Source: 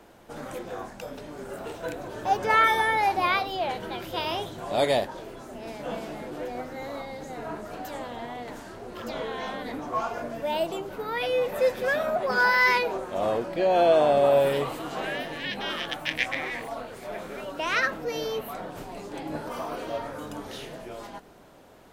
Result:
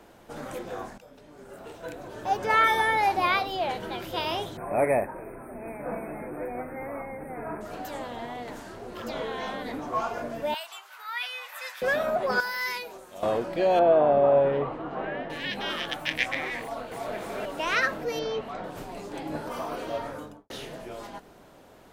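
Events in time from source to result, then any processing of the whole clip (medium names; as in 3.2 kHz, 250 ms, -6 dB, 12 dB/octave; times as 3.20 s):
0.98–2.86 s: fade in, from -15 dB
4.57–7.61 s: brick-wall FIR band-stop 2.6–8.3 kHz
10.54–11.82 s: high-pass 1.1 kHz 24 dB/octave
12.40–13.23 s: pre-emphasis filter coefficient 0.8
13.79–15.30 s: low-pass 1.5 kHz
16.62–17.16 s: echo throw 290 ms, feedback 65%, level -1 dB
18.19–18.64 s: Bessel low-pass 4.7 kHz, order 4
20.10–20.50 s: studio fade out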